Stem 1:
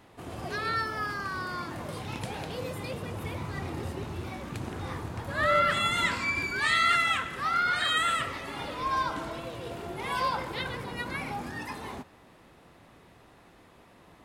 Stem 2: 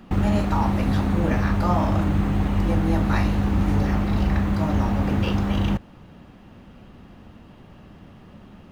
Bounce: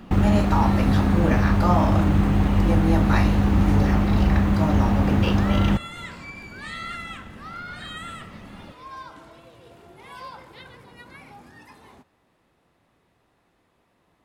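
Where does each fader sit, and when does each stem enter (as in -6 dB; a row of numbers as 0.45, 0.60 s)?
-10.5, +2.5 dB; 0.00, 0.00 s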